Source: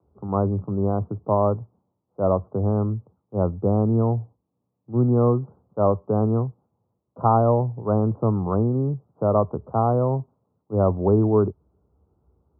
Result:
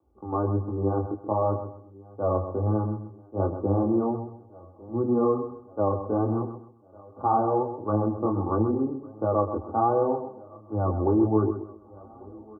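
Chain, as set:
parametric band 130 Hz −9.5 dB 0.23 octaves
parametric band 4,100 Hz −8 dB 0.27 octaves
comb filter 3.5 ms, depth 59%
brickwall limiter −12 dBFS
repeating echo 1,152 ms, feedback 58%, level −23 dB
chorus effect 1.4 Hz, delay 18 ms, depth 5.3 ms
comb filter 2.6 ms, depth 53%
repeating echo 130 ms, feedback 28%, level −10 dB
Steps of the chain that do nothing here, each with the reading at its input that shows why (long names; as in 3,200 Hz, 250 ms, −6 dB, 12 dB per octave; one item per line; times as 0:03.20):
parametric band 4,100 Hz: nothing at its input above 1,400 Hz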